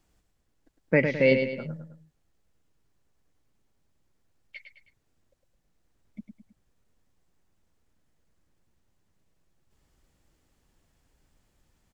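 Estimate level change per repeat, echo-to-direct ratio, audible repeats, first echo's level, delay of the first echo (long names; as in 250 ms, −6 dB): −7.0 dB, −6.0 dB, 3, −7.0 dB, 106 ms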